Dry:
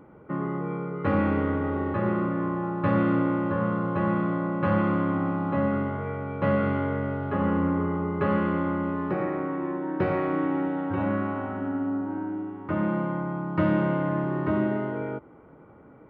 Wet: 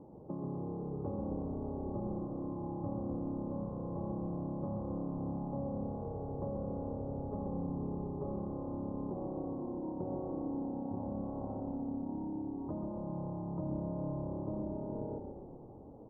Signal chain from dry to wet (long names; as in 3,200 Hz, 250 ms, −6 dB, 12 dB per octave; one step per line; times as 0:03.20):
Butterworth low-pass 940 Hz 48 dB per octave
downward compressor 4 to 1, threshold −37 dBFS, peak gain reduction 15 dB
on a send: echo with shifted repeats 133 ms, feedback 59%, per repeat −34 Hz, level −5 dB
on the sum: level −2.5 dB